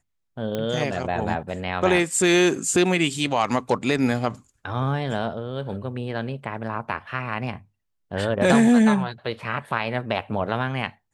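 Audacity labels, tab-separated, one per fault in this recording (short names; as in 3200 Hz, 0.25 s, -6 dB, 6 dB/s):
0.550000	0.550000	pop -14 dBFS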